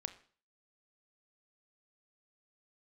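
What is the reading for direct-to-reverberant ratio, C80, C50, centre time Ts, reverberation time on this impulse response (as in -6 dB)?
9.5 dB, 18.0 dB, 14.5 dB, 6 ms, 0.45 s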